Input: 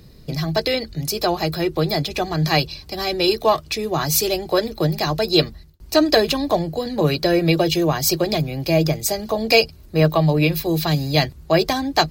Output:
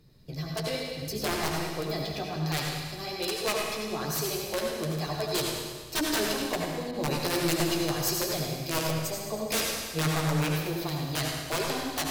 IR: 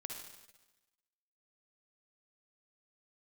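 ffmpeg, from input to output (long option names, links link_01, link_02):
-filter_complex "[0:a]asettb=1/sr,asplit=3[link_01][link_02][link_03];[link_01]atrim=end=1.024[link_04];[link_02]atrim=start=1.02:end=1.55,asetpts=PTS-STARTPTS,afade=type=in:duration=0.004:curve=qsin,afade=type=out:start_time=0.526:duration=0.004:curve=qsin,lowshelf=frequency=340:gain=8.5[link_05];[link_03]atrim=start=1.546[link_06];[link_04][link_05]acrossfade=duration=0.004:curve1=hsin:curve2=qsin[link_07];[link_07][link_06]acrossfade=duration=0.004:curve1=qsin:curve2=hsin,aeval=exprs='(mod(2.66*val(0)+1,2)-1)/2.66':channel_layout=same,flanger=delay=6.7:depth=7.9:regen=-19:speed=1.2:shape=sinusoidal[link_08];[1:a]atrim=start_sample=2205,asetrate=30870,aresample=44100[link_09];[link_08][link_09]afir=irnorm=-1:irlink=0,asettb=1/sr,asplit=3[link_10][link_11][link_12];[link_10]atrim=end=6.914[link_13];[link_11]atrim=start=6.91:end=8.91,asetpts=PTS-STARTPTS,afade=type=in:duration=0.004:curve=qsin,afade=type=out:start_time=1.996:duration=0.004:curve=qsin,adynamicequalizer=threshold=0.0126:dfrequency=4500:dqfactor=0.7:tfrequency=4500:tqfactor=0.7:attack=5:release=100:ratio=0.375:range=2.5:mode=boostabove:tftype=highshelf[link_14];[link_12]atrim=start=8.906[link_15];[link_13][link_14]acrossfade=duration=0.004:curve1=hsin:curve2=qsin[link_16];[link_16][link_15]acrossfade=duration=0.004:curve1=qsin:curve2=hsin,volume=-7dB"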